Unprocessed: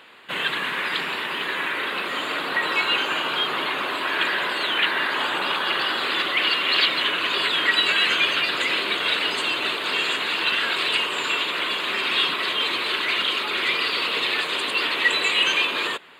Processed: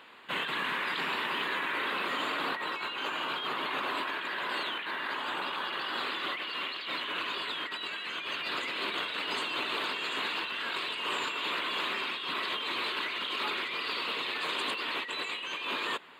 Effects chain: fifteen-band graphic EQ 250 Hz +3 dB, 1 kHz +4 dB, 10 kHz -3 dB; compressor with a negative ratio -26 dBFS, ratio -1; trim -8.5 dB

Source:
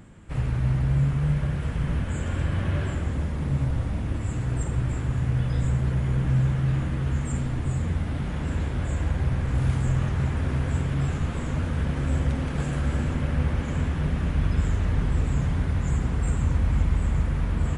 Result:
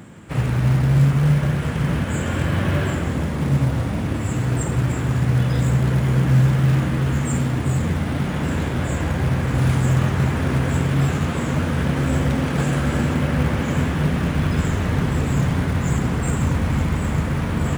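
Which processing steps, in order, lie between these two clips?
high-pass 120 Hz 12 dB/octave; in parallel at -5 dB: short-mantissa float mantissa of 2-bit; on the sum: trim +5.5 dB

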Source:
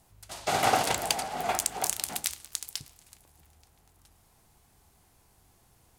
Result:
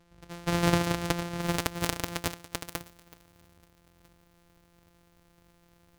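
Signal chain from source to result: sorted samples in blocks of 256 samples; treble shelf 12 kHz -9 dB, from 1.41 s -2 dB, from 2.68 s +6.5 dB

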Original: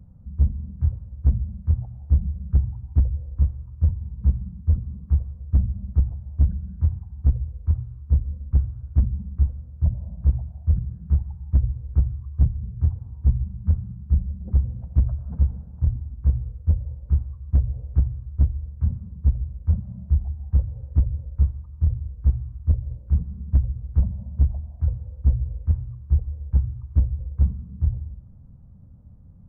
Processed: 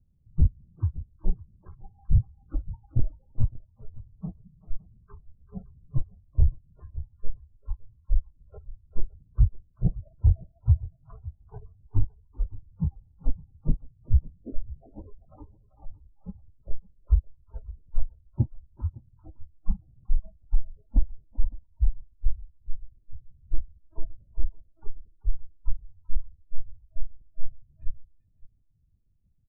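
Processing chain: pitch bend over the whole clip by -5 st starting unshifted; LPC vocoder at 8 kHz pitch kept; in parallel at +1.5 dB: compression 12:1, threshold -30 dBFS, peak gain reduction 20.5 dB; on the sum: spectral noise reduction 29 dB; bass shelf 140 Hz +5 dB; on a send: delay 560 ms -22.5 dB; on the sum: loudest bins only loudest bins 32; peak limiter -10.5 dBFS, peak gain reduction 9.5 dB; speakerphone echo 390 ms, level -14 dB

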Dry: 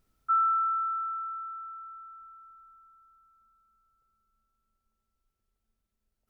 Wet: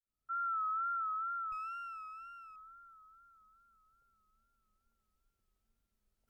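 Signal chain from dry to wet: fade-in on the opening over 1.64 s; wow and flutter 72 cents; 1.52–2.56 s: sliding maximum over 5 samples

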